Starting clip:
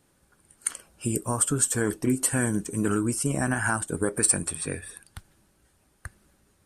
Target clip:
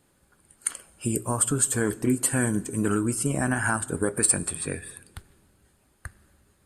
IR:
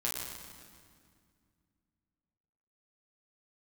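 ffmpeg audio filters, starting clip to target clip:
-filter_complex "[0:a]bandreject=f=5700:w=7.1,asplit=2[s0][s1];[1:a]atrim=start_sample=2205,asetrate=52920,aresample=44100[s2];[s1][s2]afir=irnorm=-1:irlink=0,volume=0.0944[s3];[s0][s3]amix=inputs=2:normalize=0"

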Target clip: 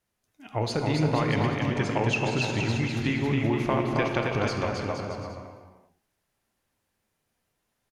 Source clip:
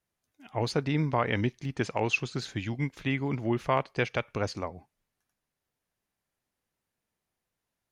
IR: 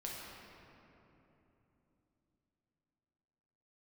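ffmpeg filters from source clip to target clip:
-filter_complex "[0:a]acompressor=threshold=0.0398:ratio=6,aecho=1:1:270|472.5|624.4|738.3|823.7:0.631|0.398|0.251|0.158|0.1,asplit=2[s0][s1];[1:a]atrim=start_sample=2205,afade=t=out:st=0.3:d=0.01,atrim=end_sample=13671,asetrate=27342,aresample=44100[s2];[s1][s2]afir=irnorm=-1:irlink=0,volume=0.944[s3];[s0][s3]amix=inputs=2:normalize=0"

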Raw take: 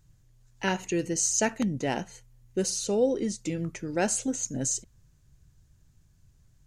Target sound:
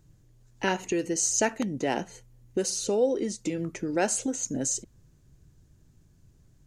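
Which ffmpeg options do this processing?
-filter_complex "[0:a]equalizer=f=330:w=0.71:g=10,acrossover=split=620[s0][s1];[s0]acompressor=threshold=0.0316:ratio=4[s2];[s2][s1]amix=inputs=2:normalize=0"

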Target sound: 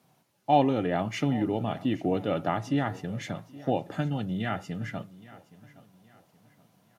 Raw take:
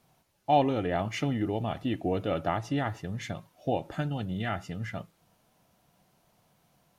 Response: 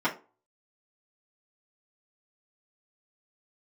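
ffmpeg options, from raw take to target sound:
-filter_complex "[0:a]highpass=f=120:w=0.5412,highpass=f=120:w=1.3066,lowshelf=f=190:g=6,aecho=1:1:820|1640|2460:0.106|0.0381|0.0137,asplit=2[s0][s1];[1:a]atrim=start_sample=2205[s2];[s1][s2]afir=irnorm=-1:irlink=0,volume=0.0473[s3];[s0][s3]amix=inputs=2:normalize=0"

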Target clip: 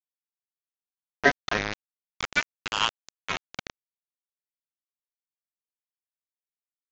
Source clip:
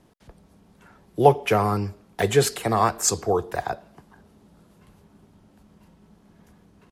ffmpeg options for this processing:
-af "equalizer=f=200:w=0.55:g=-6,bandreject=f=370:w=12,aresample=11025,aeval=exprs='val(0)*gte(abs(val(0)),0.126)':c=same,aresample=44100,aeval=exprs='val(0)*sin(2*PI*1600*n/s+1600*0.3/0.36*sin(2*PI*0.36*n/s))':c=same"

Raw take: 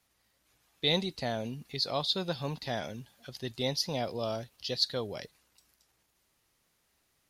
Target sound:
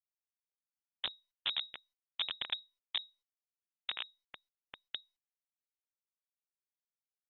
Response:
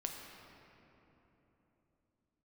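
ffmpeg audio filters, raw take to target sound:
-filter_complex "[0:a]asplit=4[s0][s1][s2][s3];[s1]asetrate=22050,aresample=44100,atempo=2,volume=0.631[s4];[s2]asetrate=55563,aresample=44100,atempo=0.793701,volume=0.355[s5];[s3]asetrate=66075,aresample=44100,atempo=0.66742,volume=0.447[s6];[s0][s4][s5][s6]amix=inputs=4:normalize=0,acompressor=threshold=0.00891:ratio=3,alimiter=level_in=5.96:limit=0.0631:level=0:latency=1:release=212,volume=0.168,equalizer=f=210:w=1.1:g=14,acrossover=split=470[s7][s8];[s7]aeval=exprs='val(0)*(1-0.5/2+0.5/2*cos(2*PI*9.5*n/s))':c=same[s9];[s8]aeval=exprs='val(0)*(1-0.5/2-0.5/2*cos(2*PI*9.5*n/s))':c=same[s10];[s9][s10]amix=inputs=2:normalize=0,aresample=11025,acrusher=bits=3:dc=4:mix=0:aa=0.000001,aresample=44100,lowpass=f=3200:t=q:w=0.5098,lowpass=f=3200:t=q:w=0.6013,lowpass=f=3200:t=q:w=0.9,lowpass=f=3200:t=q:w=2.563,afreqshift=-3800,volume=2.24" -ar 32000 -c:a mp2 -b:a 48k

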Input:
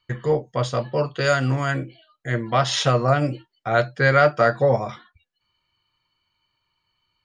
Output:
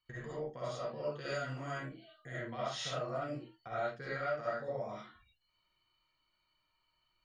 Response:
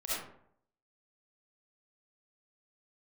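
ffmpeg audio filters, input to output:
-filter_complex "[0:a]acompressor=threshold=0.0224:ratio=4,bandreject=f=60:t=h:w=6,bandreject=f=120:t=h:w=6[s0];[1:a]atrim=start_sample=2205,atrim=end_sample=6615[s1];[s0][s1]afir=irnorm=-1:irlink=0,volume=0.376"

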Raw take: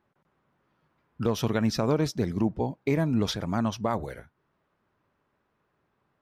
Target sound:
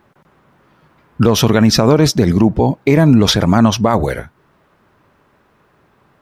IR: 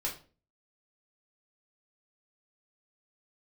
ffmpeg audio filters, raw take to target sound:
-af "alimiter=level_in=10:limit=0.891:release=50:level=0:latency=1,volume=0.891"

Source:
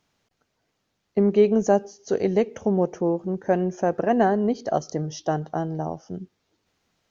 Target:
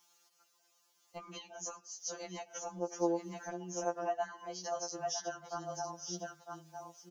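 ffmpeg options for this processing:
-af "highpass=370,tiltshelf=f=1300:g=-10,aecho=1:1:955:0.251,acompressor=threshold=0.0158:ratio=10,equalizer=f=500:t=o:w=1:g=-3,equalizer=f=1000:t=o:w=1:g=4,equalizer=f=2000:t=o:w=1:g=-12,equalizer=f=4000:t=o:w=1:g=-7,afftfilt=real='re*2.83*eq(mod(b,8),0)':imag='im*2.83*eq(mod(b,8),0)':win_size=2048:overlap=0.75,volume=2.11"

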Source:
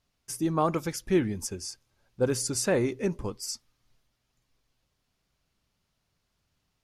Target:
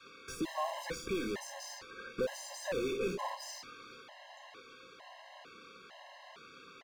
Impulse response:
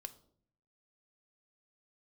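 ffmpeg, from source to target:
-filter_complex "[0:a]adynamicequalizer=threshold=0.0141:dfrequency=350:dqfactor=1:tfrequency=350:tqfactor=1:attack=5:release=100:ratio=0.375:range=2:mode=cutabove:tftype=bell,acrusher=bits=5:mode=log:mix=0:aa=0.000001,highpass=55,acrossover=split=3800[s0][s1];[s0]acompressor=threshold=0.00891:ratio=6[s2];[s1]bandreject=f=5300:w=11[s3];[s2][s3]amix=inputs=2:normalize=0,alimiter=level_in=1.68:limit=0.0631:level=0:latency=1:release=125,volume=0.596,acrossover=split=270 5800:gain=0.0891 1 0.224[s4][s5][s6];[s4][s5][s6]amix=inputs=3:normalize=0,asplit=2[s7][s8];[s8]adelay=27,volume=0.251[s9];[s7][s9]amix=inputs=2:normalize=0,aecho=1:1:31|59:0.282|0.15,asplit=2[s10][s11];[s11]highpass=f=720:p=1,volume=35.5,asoftclip=type=tanh:threshold=0.0133[s12];[s10][s12]amix=inputs=2:normalize=0,lowpass=f=1300:p=1,volume=0.501,asplit=2[s13][s14];[1:a]atrim=start_sample=2205,asetrate=74970,aresample=44100,lowshelf=f=190:g=8[s15];[s14][s15]afir=irnorm=-1:irlink=0,volume=2.37[s16];[s13][s16]amix=inputs=2:normalize=0,afftfilt=real='re*gt(sin(2*PI*1.1*pts/sr)*(1-2*mod(floor(b*sr/1024/540),2)),0)':imag='im*gt(sin(2*PI*1.1*pts/sr)*(1-2*mod(floor(b*sr/1024/540),2)),0)':win_size=1024:overlap=0.75,volume=2.11"

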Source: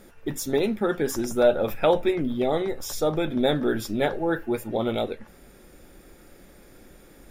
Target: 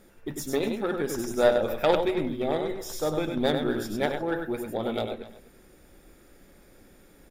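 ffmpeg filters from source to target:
-filter_complex "[0:a]asplit=2[s0][s1];[s1]aecho=0:1:98:0.596[s2];[s0][s2]amix=inputs=2:normalize=0,aeval=exprs='0.376*(cos(1*acos(clip(val(0)/0.376,-1,1)))-cos(1*PI/2))+0.0596*(cos(3*acos(clip(val(0)/0.376,-1,1)))-cos(3*PI/2))':c=same,asplit=2[s3][s4];[s4]aecho=0:1:252:0.126[s5];[s3][s5]amix=inputs=2:normalize=0"

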